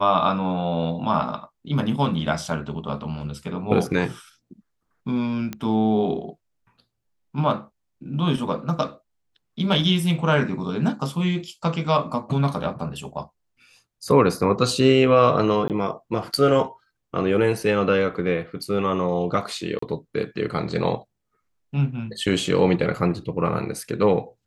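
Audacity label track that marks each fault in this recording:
5.530000	5.530000	pop -15 dBFS
15.680000	15.700000	dropout 18 ms
19.790000	19.820000	dropout 34 ms

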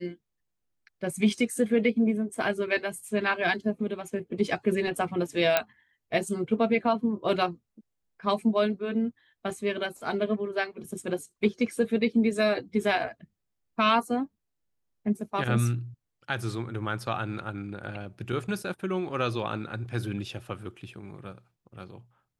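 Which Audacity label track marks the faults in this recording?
5.570000	5.570000	pop -7 dBFS

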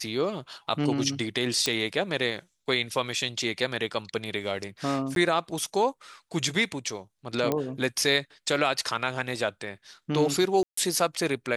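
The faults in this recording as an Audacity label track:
1.660000	1.660000	pop -9 dBFS
5.150000	5.160000	dropout 12 ms
7.520000	7.520000	pop -12 dBFS
10.630000	10.770000	dropout 144 ms

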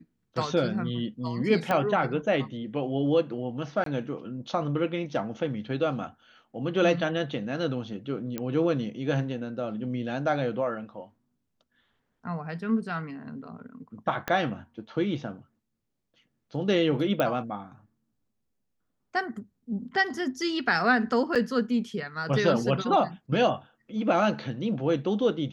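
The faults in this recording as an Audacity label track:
1.710000	1.710000	pop -14 dBFS
3.840000	3.860000	dropout 23 ms
8.380000	8.380000	pop -17 dBFS
14.280000	14.280000	pop -13 dBFS
17.200000	17.200000	pop -13 dBFS
21.350000	21.360000	dropout 6.6 ms

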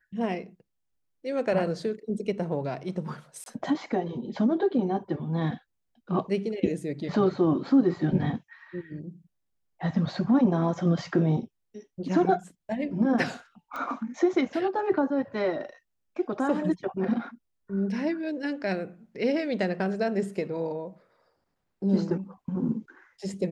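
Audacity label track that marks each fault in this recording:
3.440000	3.460000	dropout 22 ms
13.760000	13.760000	pop -23 dBFS

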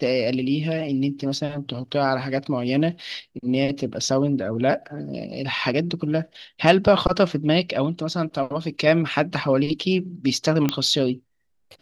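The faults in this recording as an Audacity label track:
10.690000	10.690000	pop -7 dBFS

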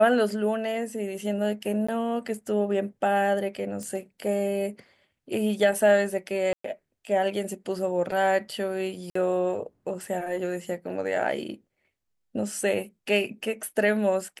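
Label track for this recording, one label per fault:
1.870000	1.890000	dropout 15 ms
3.830000	3.830000	pop -23 dBFS
6.530000	6.640000	dropout 114 ms
9.100000	9.150000	dropout 54 ms

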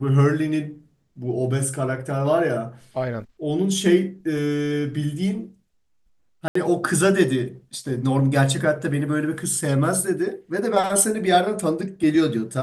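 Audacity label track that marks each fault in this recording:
6.480000	6.550000	dropout 74 ms

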